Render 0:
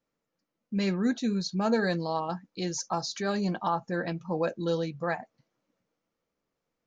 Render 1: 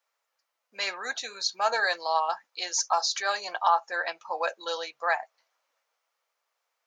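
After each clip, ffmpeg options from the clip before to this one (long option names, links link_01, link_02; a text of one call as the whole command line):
ffmpeg -i in.wav -af "highpass=frequency=710:width=0.5412,highpass=frequency=710:width=1.3066,volume=7.5dB" out.wav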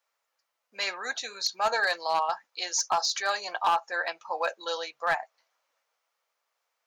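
ffmpeg -i in.wav -af "asoftclip=type=hard:threshold=-18dB" out.wav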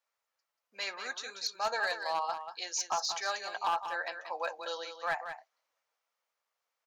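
ffmpeg -i in.wav -af "aecho=1:1:186:0.355,volume=-6.5dB" out.wav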